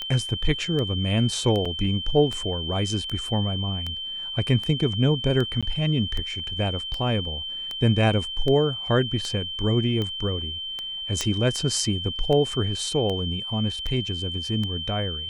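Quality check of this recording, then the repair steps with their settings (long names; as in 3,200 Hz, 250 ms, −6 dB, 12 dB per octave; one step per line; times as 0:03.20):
scratch tick 78 rpm −17 dBFS
whistle 3,100 Hz −30 dBFS
0:01.65–0:01.66: drop-out 5.1 ms
0:05.61–0:05.63: drop-out 16 ms
0:11.21: click −10 dBFS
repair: click removal
notch filter 3,100 Hz, Q 30
repair the gap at 0:01.65, 5.1 ms
repair the gap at 0:05.61, 16 ms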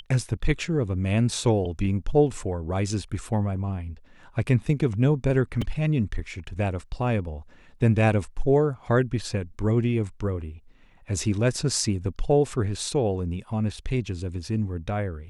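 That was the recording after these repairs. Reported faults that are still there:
none of them is left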